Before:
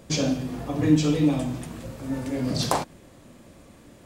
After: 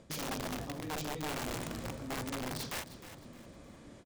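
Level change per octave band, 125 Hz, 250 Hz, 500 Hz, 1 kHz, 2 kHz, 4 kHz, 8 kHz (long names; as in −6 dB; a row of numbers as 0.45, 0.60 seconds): −16.0, −17.5, −12.0, −8.5, −4.0, −9.0, −8.0 decibels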